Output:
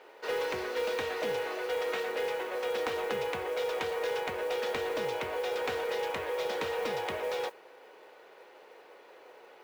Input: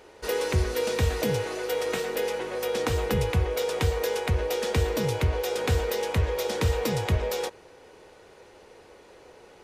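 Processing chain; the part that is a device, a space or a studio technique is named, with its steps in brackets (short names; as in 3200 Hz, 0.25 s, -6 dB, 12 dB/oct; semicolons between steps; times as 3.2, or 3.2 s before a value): carbon microphone (BPF 470–3300 Hz; soft clip -24.5 dBFS, distortion -18 dB; modulation noise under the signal 23 dB)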